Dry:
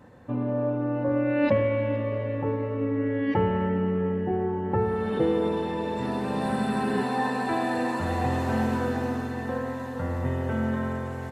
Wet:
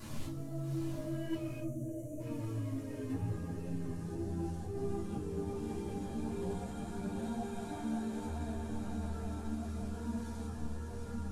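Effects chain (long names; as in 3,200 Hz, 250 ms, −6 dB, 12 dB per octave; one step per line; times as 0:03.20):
linear delta modulator 64 kbit/s, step −40 dBFS
source passing by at 0:02.58, 38 m/s, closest 24 metres
compressor whose output falls as the input rises −38 dBFS, ratio −1
bass and treble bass +11 dB, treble +9 dB
brickwall limiter −38.5 dBFS, peak gain reduction 19 dB
feedback delay with all-pass diffusion 745 ms, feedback 49%, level −4 dB
gain on a spectral selection 0:01.60–0:02.20, 670–5,800 Hz −21 dB
rectangular room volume 240 cubic metres, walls furnished, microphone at 3.1 metres
string-ensemble chorus
level +1 dB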